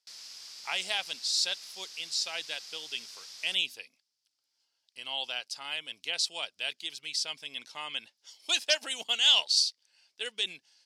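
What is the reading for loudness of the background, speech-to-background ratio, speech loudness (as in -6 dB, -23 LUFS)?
-44.0 LUFS, 14.0 dB, -30.0 LUFS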